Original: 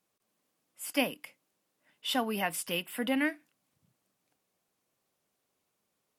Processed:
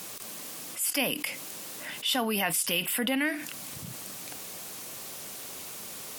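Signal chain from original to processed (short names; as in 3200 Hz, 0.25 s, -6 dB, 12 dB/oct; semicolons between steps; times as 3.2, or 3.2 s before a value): high shelf 2500 Hz +8.5 dB; fast leveller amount 70%; gain -3.5 dB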